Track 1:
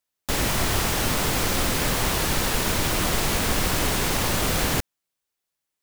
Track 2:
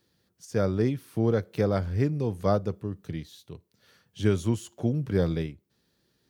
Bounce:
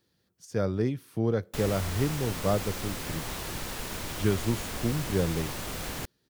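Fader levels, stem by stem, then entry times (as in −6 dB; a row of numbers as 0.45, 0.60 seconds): −12.5, −2.5 decibels; 1.25, 0.00 seconds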